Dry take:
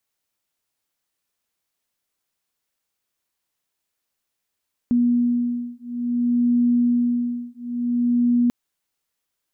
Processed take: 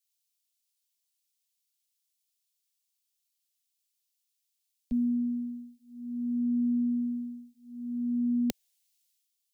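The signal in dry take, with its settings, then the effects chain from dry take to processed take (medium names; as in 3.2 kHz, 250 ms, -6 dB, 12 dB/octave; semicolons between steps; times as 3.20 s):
beating tones 241 Hz, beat 0.57 Hz, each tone -20.5 dBFS 3.59 s
peaking EQ 170 Hz -10.5 dB 1.2 oct; static phaser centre 310 Hz, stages 6; three bands expanded up and down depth 70%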